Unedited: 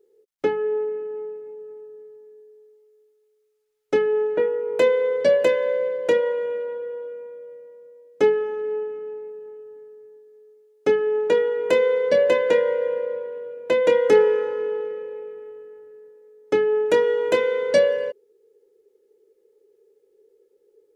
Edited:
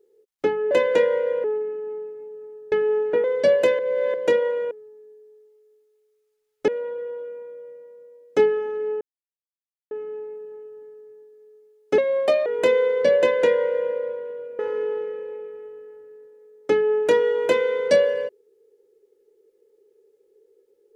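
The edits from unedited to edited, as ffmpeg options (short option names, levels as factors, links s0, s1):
-filter_complex "[0:a]asplit=13[s0][s1][s2][s3][s4][s5][s6][s7][s8][s9][s10][s11][s12];[s0]atrim=end=0.712[s13];[s1]atrim=start=12.258:end=12.992[s14];[s2]atrim=start=0.708:end=1.992[s15];[s3]atrim=start=3.958:end=4.482[s16];[s4]atrim=start=5.048:end=5.602[s17];[s5]atrim=start=5.598:end=5.952,asetpts=PTS-STARTPTS,areverse[s18];[s6]atrim=start=5.948:end=6.522[s19];[s7]atrim=start=1.988:end=3.962[s20];[s8]atrim=start=6.518:end=8.85,asetpts=PTS-STARTPTS,afade=t=out:st=2.328:d=0.004:c=hsin,apad=pad_dur=0.9[s21];[s9]atrim=start=8.85:end=10.924,asetpts=PTS-STARTPTS,afade=t=in:d=0.004:c=hsin[s22];[s10]atrim=start=10.92:end=11.53,asetpts=PTS-STARTPTS,asetrate=56007,aresample=44100[s23];[s11]atrim=start=11.526:end=13.662[s24];[s12]atrim=start=14.418[s25];[s13][s14]acrossfade=d=0.004:c1=hsin:c2=hsin[s26];[s26][s15]acrossfade=d=0.004:c1=hsin:c2=hsin[s27];[s27][s16]acrossfade=d=0.004:c1=hsin:c2=hsin[s28];[s28][s17]acrossfade=d=0.004:c1=hsin:c2=hsin[s29];[s29][s18]acrossfade=d=0.004:c1=hsin:c2=hsin[s30];[s30][s19]acrossfade=d=0.004:c1=hsin:c2=hsin[s31];[s31][s20]acrossfade=d=0.004:c1=hsin:c2=hsin[s32];[s21][s22]concat=n=2:v=0:a=1[s33];[s32][s33]acrossfade=d=0.004:c1=hsin:c2=hsin[s34];[s34][s23]acrossfade=d=0.004:c1=hsin:c2=hsin[s35];[s35][s24]acrossfade=d=0.004:c1=hsin:c2=hsin[s36];[s36][s25]acrossfade=d=0.004:c1=hsin:c2=hsin"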